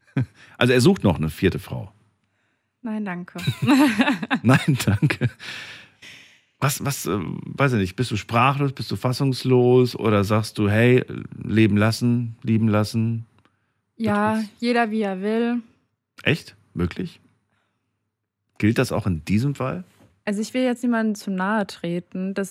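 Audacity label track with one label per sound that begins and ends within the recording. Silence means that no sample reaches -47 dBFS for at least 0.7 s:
2.840000	17.260000	sound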